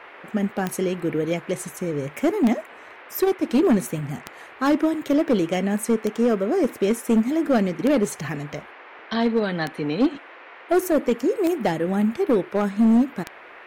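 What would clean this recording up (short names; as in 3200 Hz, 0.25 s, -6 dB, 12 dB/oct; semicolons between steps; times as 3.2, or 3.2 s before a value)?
clip repair -13 dBFS; de-click; noise print and reduce 23 dB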